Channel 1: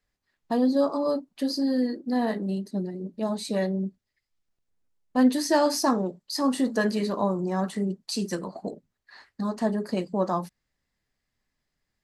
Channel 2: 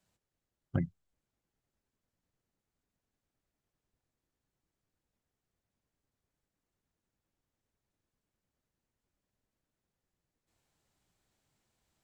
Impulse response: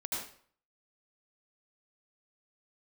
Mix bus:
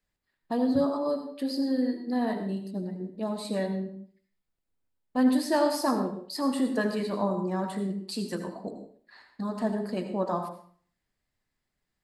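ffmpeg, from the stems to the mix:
-filter_complex "[0:a]equalizer=f=6100:w=4.5:g=-11.5,volume=0.501,asplit=2[s0][s1];[s1]volume=0.501[s2];[1:a]volume=0.316[s3];[2:a]atrim=start_sample=2205[s4];[s2][s4]afir=irnorm=-1:irlink=0[s5];[s0][s3][s5]amix=inputs=3:normalize=0"

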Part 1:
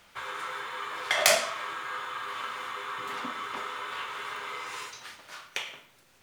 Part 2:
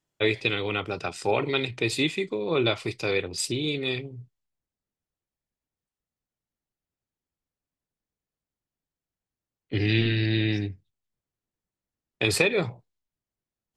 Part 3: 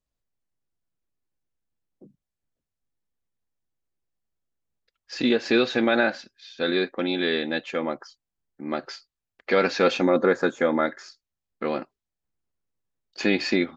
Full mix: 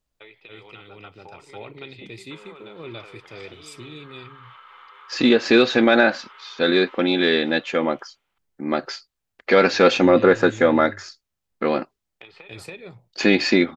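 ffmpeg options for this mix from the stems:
-filter_complex "[0:a]agate=range=0.0224:threshold=0.00224:ratio=3:detection=peak,acompressor=threshold=0.01:ratio=3,adelay=2150,volume=0.398,asplit=2[s0][s1];[s1]volume=0.106[s2];[1:a]bass=f=250:g=3,treble=f=4000:g=-1,dynaudnorm=f=260:g=5:m=3.76,volume=0.112,asplit=2[s3][s4];[s4]volume=0.668[s5];[2:a]acontrast=26,volume=1.12[s6];[s0][s3]amix=inputs=2:normalize=0,highpass=220,equalizer=f=270:t=q:w=4:g=-7,equalizer=f=860:t=q:w=4:g=9,equalizer=f=1300:t=q:w=4:g=9,equalizer=f=2100:t=q:w=4:g=5,equalizer=f=3100:t=q:w=4:g=7,lowpass=f=4200:w=0.5412,lowpass=f=4200:w=1.3066,acompressor=threshold=0.00708:ratio=8,volume=1[s7];[s2][s5]amix=inputs=2:normalize=0,aecho=0:1:280:1[s8];[s6][s7][s8]amix=inputs=3:normalize=0"

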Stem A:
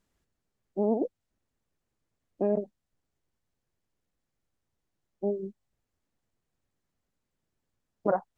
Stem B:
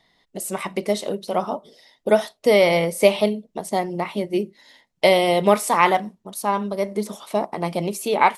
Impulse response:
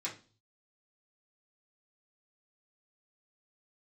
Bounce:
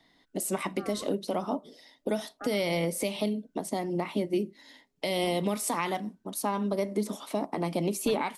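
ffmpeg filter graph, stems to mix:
-filter_complex "[0:a]equalizer=f=530:w=0.94:g=-11.5,aeval=exprs='val(0)*sin(2*PI*1000*n/s+1000*0.6/0.31*sin(2*PI*0.31*n/s))':c=same,volume=0.596[s0];[1:a]volume=0.708[s1];[s0][s1]amix=inputs=2:normalize=0,equalizer=f=280:w=3.6:g=12,acrossover=split=220|3000[s2][s3][s4];[s3]acompressor=threshold=0.0631:ratio=6[s5];[s2][s5][s4]amix=inputs=3:normalize=0,alimiter=limit=0.126:level=0:latency=1:release=228"

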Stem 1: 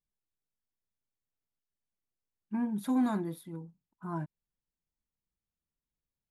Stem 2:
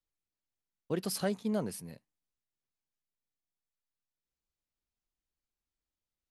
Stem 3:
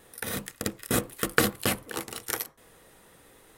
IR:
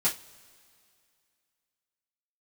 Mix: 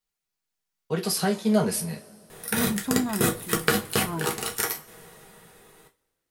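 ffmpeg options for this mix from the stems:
-filter_complex "[0:a]acompressor=threshold=0.0355:ratio=6,volume=0.596[s0];[1:a]lowshelf=f=500:g=-8.5,acrossover=split=320[s1][s2];[s2]acompressor=threshold=0.02:ratio=6[s3];[s1][s3]amix=inputs=2:normalize=0,volume=1.19,asplit=2[s4][s5];[s5]volume=0.631[s6];[2:a]acompressor=threshold=0.0251:ratio=2.5,adelay=2300,volume=0.562,asplit=2[s7][s8];[s8]volume=0.501[s9];[3:a]atrim=start_sample=2205[s10];[s6][s9]amix=inputs=2:normalize=0[s11];[s11][s10]afir=irnorm=-1:irlink=0[s12];[s0][s4][s7][s12]amix=inputs=4:normalize=0,dynaudnorm=f=230:g=13:m=3.76"

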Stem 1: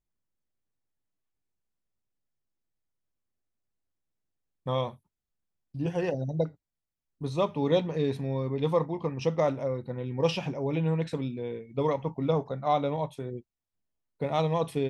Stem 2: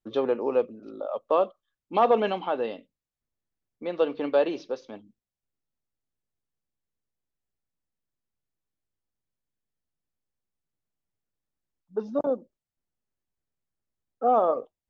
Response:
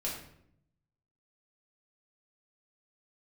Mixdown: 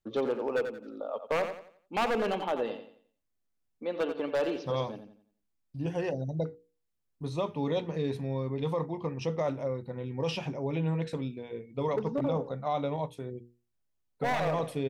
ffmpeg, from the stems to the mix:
-filter_complex "[0:a]bandreject=f=60:t=h:w=6,bandreject=f=120:t=h:w=6,bandreject=f=180:t=h:w=6,bandreject=f=240:t=h:w=6,bandreject=f=300:t=h:w=6,bandreject=f=360:t=h:w=6,bandreject=f=420:t=h:w=6,bandreject=f=480:t=h:w=6,volume=0.794[s0];[1:a]aphaser=in_gain=1:out_gain=1:delay=4.4:decay=0.26:speed=0.42:type=sinusoidal,aeval=exprs='0.141*(abs(mod(val(0)/0.141+3,4)-2)-1)':c=same,volume=0.668,asplit=2[s1][s2];[s2]volume=0.316,aecho=0:1:88|176|264|352|440:1|0.35|0.122|0.0429|0.015[s3];[s0][s1][s3]amix=inputs=3:normalize=0,alimiter=limit=0.0841:level=0:latency=1:release=15"

